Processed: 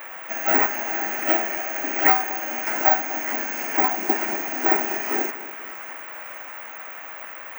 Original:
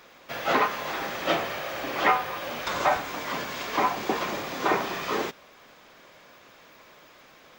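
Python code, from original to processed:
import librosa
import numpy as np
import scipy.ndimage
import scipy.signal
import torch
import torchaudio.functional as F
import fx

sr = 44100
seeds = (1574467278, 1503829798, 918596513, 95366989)

p1 = scipy.signal.sosfilt(scipy.signal.butter(6, 160.0, 'highpass', fs=sr, output='sos'), x)
p2 = fx.fixed_phaser(p1, sr, hz=750.0, stages=8)
p3 = fx.dmg_noise_band(p2, sr, seeds[0], low_hz=520.0, high_hz=2300.0, level_db=-45.0)
p4 = p3 + fx.echo_split(p3, sr, split_hz=1100.0, low_ms=242, high_ms=607, feedback_pct=52, wet_db=-15.5, dry=0)
p5 = (np.kron(p4[::2], np.eye(2)[0]) * 2)[:len(p4)]
y = F.gain(torch.from_numpy(p5), 4.5).numpy()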